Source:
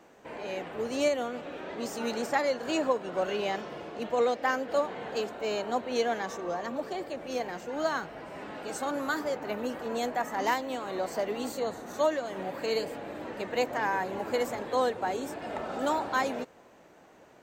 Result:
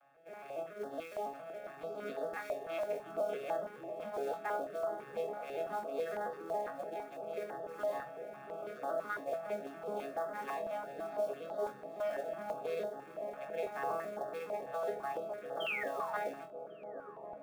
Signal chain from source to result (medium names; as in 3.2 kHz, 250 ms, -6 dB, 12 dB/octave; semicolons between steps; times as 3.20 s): vocoder on a broken chord minor triad, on C#3, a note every 139 ms; three-band isolator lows -20 dB, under 520 Hz, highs -22 dB, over 3.2 kHz; painted sound fall, 15.60–16.11 s, 880–3300 Hz -36 dBFS; distance through air 68 m; feedback comb 630 Hz, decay 0.25 s, harmonics all, mix 60%; in parallel at -3.5 dB: short-mantissa float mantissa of 2-bit; on the sum: hard clipper -24.5 dBFS, distortion -24 dB; comb of notches 980 Hz; on a send: flutter echo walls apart 3.9 m, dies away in 0.22 s; on the sum: peak limiter -31 dBFS, peak gain reduction 10 dB; feedback echo behind a low-pass 1097 ms, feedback 64%, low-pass 710 Hz, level -7 dB; step-sequenced notch 6 Hz 390–2400 Hz; trim +4.5 dB